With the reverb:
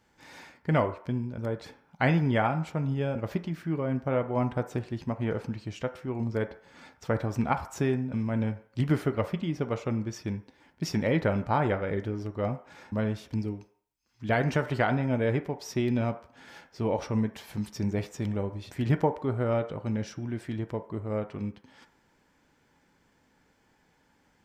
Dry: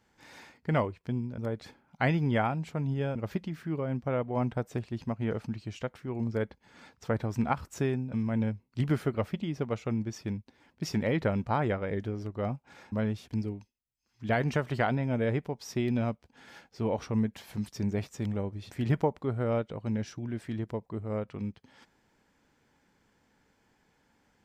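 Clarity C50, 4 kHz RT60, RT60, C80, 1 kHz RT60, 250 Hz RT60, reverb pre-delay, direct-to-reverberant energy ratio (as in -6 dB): 13.5 dB, 0.55 s, 0.60 s, 17.5 dB, 0.60 s, 0.40 s, 3 ms, 8.0 dB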